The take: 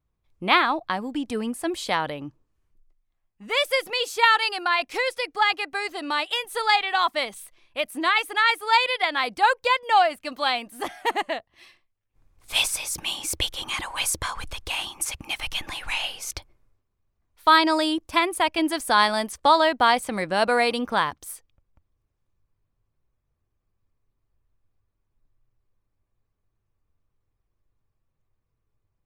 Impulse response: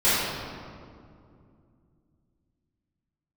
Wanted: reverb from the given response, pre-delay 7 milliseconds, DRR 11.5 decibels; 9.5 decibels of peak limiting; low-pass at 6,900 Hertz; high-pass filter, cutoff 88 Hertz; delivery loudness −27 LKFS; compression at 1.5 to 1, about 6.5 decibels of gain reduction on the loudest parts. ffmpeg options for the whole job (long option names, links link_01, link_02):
-filter_complex "[0:a]highpass=88,lowpass=6900,acompressor=threshold=-31dB:ratio=1.5,alimiter=limit=-19dB:level=0:latency=1,asplit=2[link_01][link_02];[1:a]atrim=start_sample=2205,adelay=7[link_03];[link_02][link_03]afir=irnorm=-1:irlink=0,volume=-30dB[link_04];[link_01][link_04]amix=inputs=2:normalize=0,volume=3dB"